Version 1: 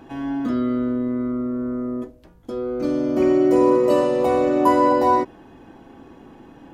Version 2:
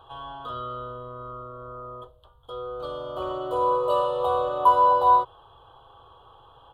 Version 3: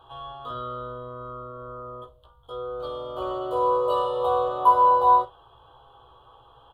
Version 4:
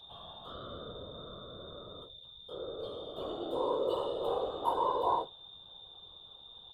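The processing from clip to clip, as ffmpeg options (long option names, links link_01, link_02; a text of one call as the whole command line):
ffmpeg -i in.wav -af "firequalizer=gain_entry='entry(120,0);entry(190,-26);entry(280,-26);entry(450,-1);entry(660,-1);entry(1200,11);entry(2100,-28);entry(3200,13);entry(5500,-20);entry(8600,-5)':delay=0.05:min_phase=1,volume=-4.5dB" out.wav
ffmpeg -i in.wav -af "aecho=1:1:16|52:0.631|0.2,volume=-2.5dB" out.wav
ffmpeg -i in.wav -af "aeval=exprs='val(0)+0.00794*sin(2*PI*3600*n/s)':channel_layout=same,afftfilt=real='hypot(re,im)*cos(2*PI*random(0))':imag='hypot(re,im)*sin(2*PI*random(1))':win_size=512:overlap=0.75,equalizer=frequency=1200:width_type=o:width=1.1:gain=-9.5,volume=-1dB" out.wav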